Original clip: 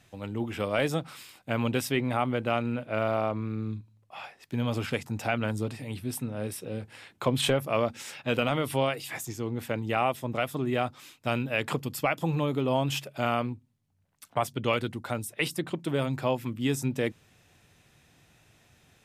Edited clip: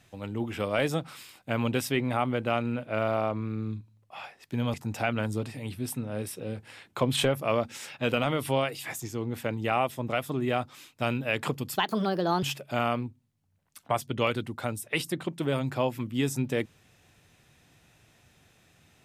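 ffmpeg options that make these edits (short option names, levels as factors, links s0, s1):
-filter_complex "[0:a]asplit=4[s0][s1][s2][s3];[s0]atrim=end=4.742[s4];[s1]atrim=start=4.988:end=12.014[s5];[s2]atrim=start=12.01:end=12.89,asetpts=PTS-STARTPTS,asetrate=58212,aresample=44100[s6];[s3]atrim=start=12.886[s7];[s4][s5]acrossfade=d=0.004:c1=hsin:c2=hsin[s8];[s8][s6]acrossfade=d=0.004:c1=hsin:c2=hsin[s9];[s9][s7]acrossfade=d=0.004:c1=hsin:c2=hsin"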